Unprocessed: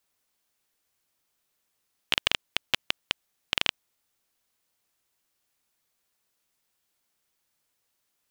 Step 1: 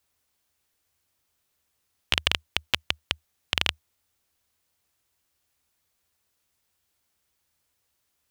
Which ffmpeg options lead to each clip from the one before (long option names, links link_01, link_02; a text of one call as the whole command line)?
ffmpeg -i in.wav -af "equalizer=frequency=77:width=2.2:gain=14.5,volume=1.5dB" out.wav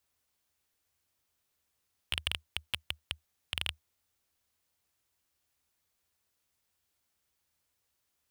ffmpeg -i in.wav -af "asoftclip=type=tanh:threshold=-12dB,volume=-4.5dB" out.wav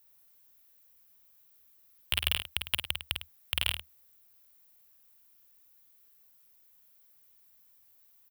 ffmpeg -i in.wav -filter_complex "[0:a]aexciter=amount=4.1:drive=6.3:freq=11000,asplit=2[link_01][link_02];[link_02]aecho=0:1:46|51|104:0.126|0.501|0.237[link_03];[link_01][link_03]amix=inputs=2:normalize=0,volume=3.5dB" out.wav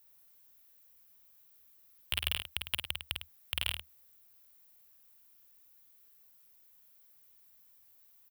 ffmpeg -i in.wav -af "alimiter=limit=-11.5dB:level=0:latency=1:release=204" out.wav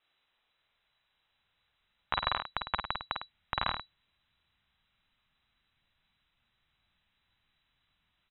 ffmpeg -i in.wav -af "lowpass=frequency=3400:width_type=q:width=0.5098,lowpass=frequency=3400:width_type=q:width=0.6013,lowpass=frequency=3400:width_type=q:width=0.9,lowpass=frequency=3400:width_type=q:width=2.563,afreqshift=-4000,asubboost=boost=11:cutoff=140,volume=4.5dB" out.wav